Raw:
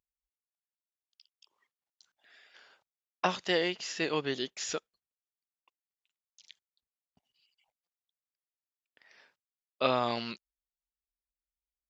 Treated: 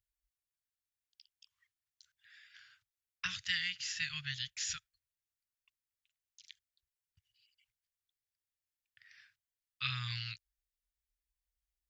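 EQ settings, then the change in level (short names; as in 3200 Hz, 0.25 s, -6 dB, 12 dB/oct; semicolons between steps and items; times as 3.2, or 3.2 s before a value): elliptic band-stop 110–1600 Hz, stop band 50 dB; low shelf 430 Hz +9.5 dB; dynamic EQ 760 Hz, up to -7 dB, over -53 dBFS, Q 0.75; 0.0 dB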